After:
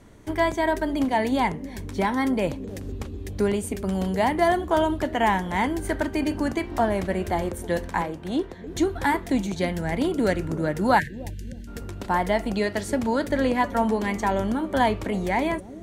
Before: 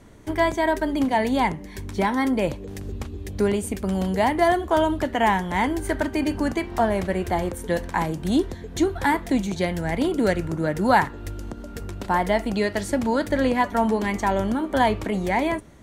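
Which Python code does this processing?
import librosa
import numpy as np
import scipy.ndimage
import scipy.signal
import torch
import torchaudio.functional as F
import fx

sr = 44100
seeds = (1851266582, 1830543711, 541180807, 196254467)

p1 = fx.bass_treble(x, sr, bass_db=-10, treble_db=-10, at=(8.01, 8.67))
p2 = fx.spec_erase(p1, sr, start_s=10.99, length_s=0.68, low_hz=240.0, high_hz=1500.0)
p3 = p2 + fx.echo_bbd(p2, sr, ms=308, stages=1024, feedback_pct=47, wet_db=-14.5, dry=0)
y = F.gain(torch.from_numpy(p3), -1.5).numpy()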